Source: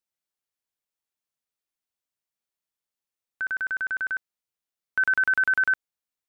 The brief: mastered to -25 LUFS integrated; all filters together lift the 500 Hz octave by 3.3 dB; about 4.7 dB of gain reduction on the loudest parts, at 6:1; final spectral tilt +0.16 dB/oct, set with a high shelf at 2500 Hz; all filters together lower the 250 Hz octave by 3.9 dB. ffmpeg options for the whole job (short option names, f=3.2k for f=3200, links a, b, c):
-af "equalizer=f=250:t=o:g=-8,equalizer=f=500:t=o:g=6.5,highshelf=f=2.5k:g=-8.5,acompressor=threshold=-26dB:ratio=6,volume=5dB"